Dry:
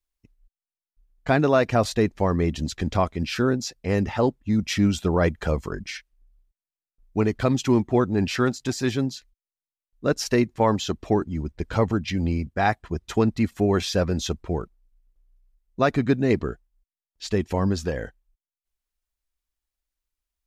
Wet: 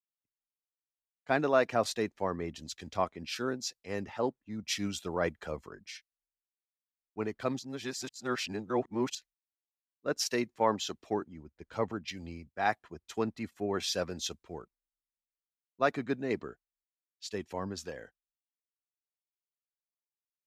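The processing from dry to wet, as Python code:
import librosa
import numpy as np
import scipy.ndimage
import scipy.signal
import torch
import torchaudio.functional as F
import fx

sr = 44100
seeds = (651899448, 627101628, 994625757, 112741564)

y = fx.edit(x, sr, fx.reverse_span(start_s=7.59, length_s=1.56), tone=tone)
y = fx.highpass(y, sr, hz=410.0, slope=6)
y = fx.band_widen(y, sr, depth_pct=70)
y = F.gain(torch.from_numpy(y), -8.0).numpy()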